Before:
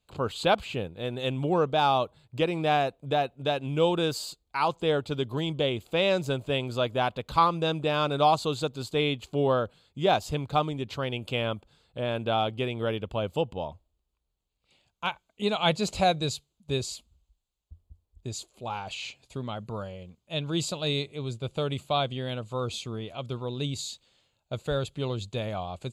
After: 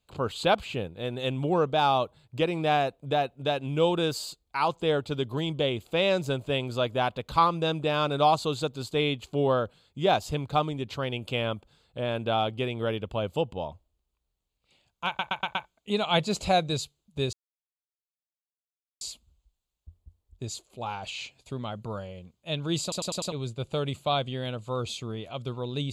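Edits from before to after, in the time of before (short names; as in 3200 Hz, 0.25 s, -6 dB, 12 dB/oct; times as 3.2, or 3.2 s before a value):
15.07 stutter 0.12 s, 5 plays
16.85 insert silence 1.68 s
20.66 stutter in place 0.10 s, 5 plays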